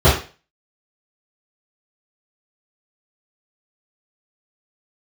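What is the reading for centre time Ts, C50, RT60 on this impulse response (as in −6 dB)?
36 ms, 5.5 dB, 0.35 s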